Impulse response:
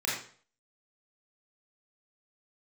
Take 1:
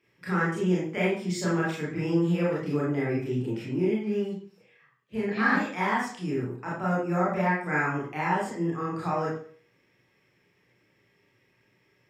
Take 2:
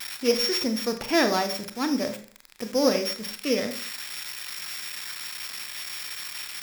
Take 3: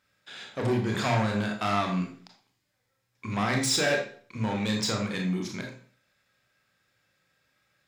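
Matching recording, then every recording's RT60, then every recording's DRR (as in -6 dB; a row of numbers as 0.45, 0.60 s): 1; 0.45, 0.45, 0.45 s; -6.5, 8.0, 1.5 dB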